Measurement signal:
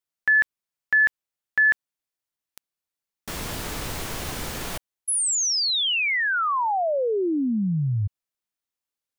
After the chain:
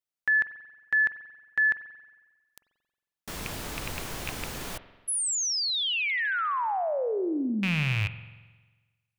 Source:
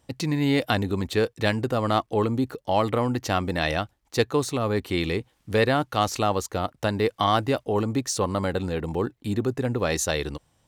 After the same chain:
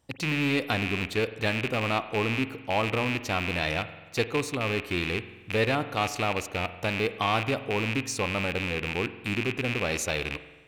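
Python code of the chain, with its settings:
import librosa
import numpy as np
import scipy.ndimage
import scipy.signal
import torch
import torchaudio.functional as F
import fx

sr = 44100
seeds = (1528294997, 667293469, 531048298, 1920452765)

y = fx.rattle_buzz(x, sr, strikes_db=-29.0, level_db=-13.0)
y = fx.rev_spring(y, sr, rt60_s=1.3, pass_ms=(45,), chirp_ms=60, drr_db=12.0)
y = y * librosa.db_to_amplitude(-5.0)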